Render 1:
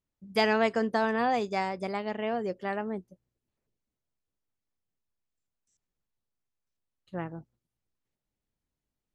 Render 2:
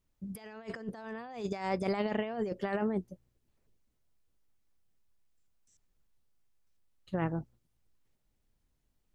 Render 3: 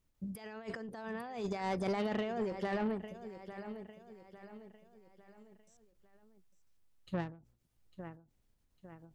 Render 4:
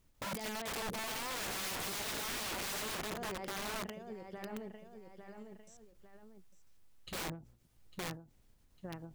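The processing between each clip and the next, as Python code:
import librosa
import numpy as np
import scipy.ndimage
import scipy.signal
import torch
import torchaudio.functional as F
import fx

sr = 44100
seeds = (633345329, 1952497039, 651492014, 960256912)

y1 = fx.low_shelf(x, sr, hz=63.0, db=10.0)
y1 = fx.over_compress(y1, sr, threshold_db=-34.0, ratio=-0.5)
y2 = fx.echo_feedback(y1, sr, ms=852, feedback_pct=42, wet_db=-14)
y2 = 10.0 ** (-29.5 / 20.0) * np.tanh(y2 / 10.0 ** (-29.5 / 20.0))
y2 = fx.end_taper(y2, sr, db_per_s=130.0)
y2 = y2 * 10.0 ** (1.0 / 20.0)
y3 = (np.mod(10.0 ** (42.5 / 20.0) * y2 + 1.0, 2.0) - 1.0) / 10.0 ** (42.5 / 20.0)
y3 = y3 * 10.0 ** (8.0 / 20.0)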